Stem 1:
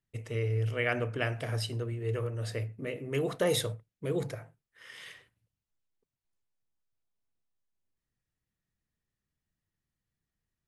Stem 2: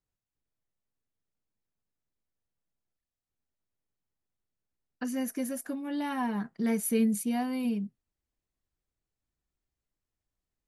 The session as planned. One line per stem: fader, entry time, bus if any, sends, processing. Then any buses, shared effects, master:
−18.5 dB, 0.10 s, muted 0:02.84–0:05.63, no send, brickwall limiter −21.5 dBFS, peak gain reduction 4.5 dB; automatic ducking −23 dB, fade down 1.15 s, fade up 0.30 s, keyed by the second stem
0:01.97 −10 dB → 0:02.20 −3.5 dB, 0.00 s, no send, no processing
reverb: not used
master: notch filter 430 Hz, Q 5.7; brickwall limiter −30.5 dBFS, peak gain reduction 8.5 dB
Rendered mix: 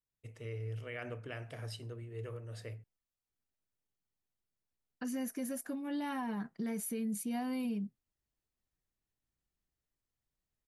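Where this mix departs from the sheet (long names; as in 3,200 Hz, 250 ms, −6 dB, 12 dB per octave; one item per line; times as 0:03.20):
stem 1 −18.5 dB → −10.5 dB
master: missing notch filter 430 Hz, Q 5.7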